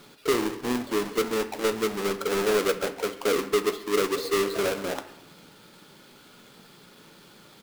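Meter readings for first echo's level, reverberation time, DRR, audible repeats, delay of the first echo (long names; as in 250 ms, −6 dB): −21.5 dB, 0.90 s, 8.5 dB, 1, 137 ms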